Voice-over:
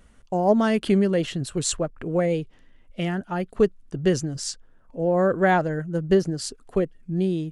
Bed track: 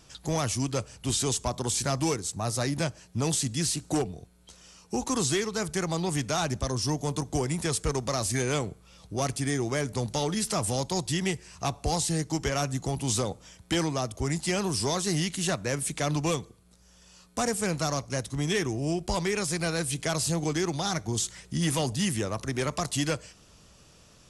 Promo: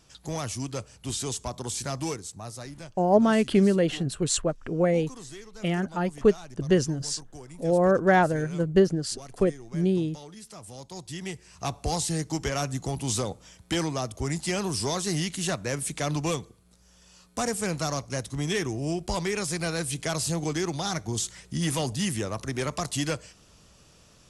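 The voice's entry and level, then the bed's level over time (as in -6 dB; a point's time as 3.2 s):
2.65 s, -0.5 dB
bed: 2.11 s -4 dB
2.98 s -16.5 dB
10.6 s -16.5 dB
11.73 s -0.5 dB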